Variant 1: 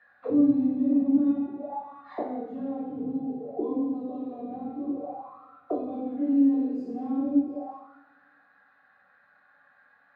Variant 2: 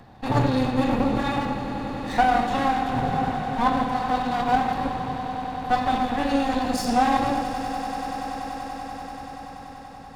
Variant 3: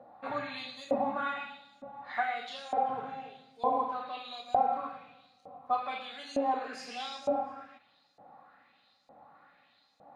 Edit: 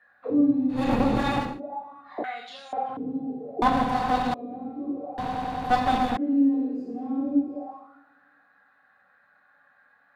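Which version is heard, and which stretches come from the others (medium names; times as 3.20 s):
1
0.80–1.49 s: from 2, crossfade 0.24 s
2.24–2.97 s: from 3
3.62–4.34 s: from 2
5.18–6.17 s: from 2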